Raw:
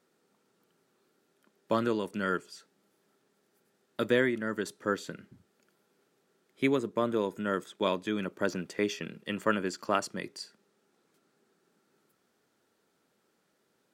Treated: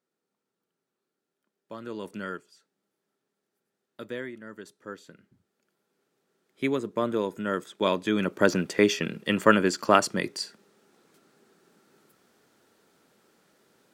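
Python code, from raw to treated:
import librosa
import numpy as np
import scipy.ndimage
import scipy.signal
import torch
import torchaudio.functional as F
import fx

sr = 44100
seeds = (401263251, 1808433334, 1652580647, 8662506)

y = fx.gain(x, sr, db=fx.line((1.78, -13.0), (2.09, -0.5), (2.51, -10.0), (5.05, -10.0), (7.04, 2.0), (7.65, 2.0), (8.42, 9.0)))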